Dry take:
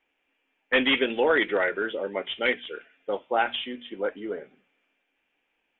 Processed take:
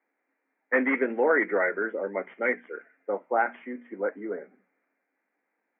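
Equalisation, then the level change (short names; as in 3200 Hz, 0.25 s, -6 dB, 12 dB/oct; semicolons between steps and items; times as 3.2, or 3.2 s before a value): Chebyshev band-pass 180–2100 Hz, order 5; 0.0 dB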